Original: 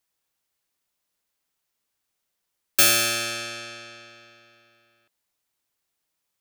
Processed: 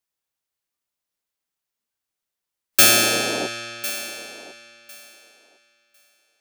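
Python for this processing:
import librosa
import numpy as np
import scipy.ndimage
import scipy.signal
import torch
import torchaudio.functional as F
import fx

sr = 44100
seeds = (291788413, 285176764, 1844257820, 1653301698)

y = fx.noise_reduce_blind(x, sr, reduce_db=10)
y = fx.dmg_noise_band(y, sr, seeds[0], low_hz=200.0, high_hz=740.0, level_db=-32.0, at=(2.81, 3.46), fade=0.02)
y = fx.echo_thinned(y, sr, ms=1052, feedback_pct=17, hz=360.0, wet_db=-15)
y = y * librosa.db_to_amplitude(4.0)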